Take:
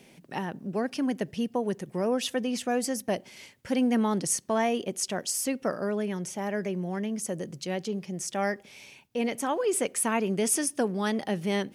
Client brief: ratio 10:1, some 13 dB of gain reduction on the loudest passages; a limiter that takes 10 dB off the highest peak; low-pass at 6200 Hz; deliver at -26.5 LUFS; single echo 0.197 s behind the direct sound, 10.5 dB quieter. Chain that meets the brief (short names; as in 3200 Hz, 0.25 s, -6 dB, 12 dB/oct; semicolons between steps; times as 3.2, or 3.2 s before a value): LPF 6200 Hz; compressor 10:1, threshold -35 dBFS; limiter -34.5 dBFS; echo 0.197 s -10.5 dB; gain +16 dB